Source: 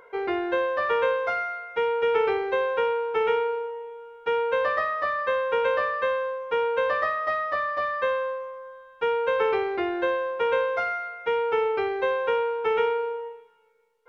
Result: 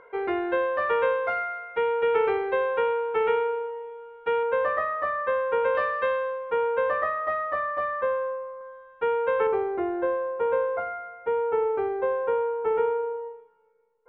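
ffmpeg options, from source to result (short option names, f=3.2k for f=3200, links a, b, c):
-af "asetnsamples=n=441:p=0,asendcmd='4.43 lowpass f 1800;5.75 lowpass f 3300;6.5 lowpass f 1800;8.01 lowpass f 1300;8.61 lowpass f 1900;9.47 lowpass f 1100',lowpass=2.6k"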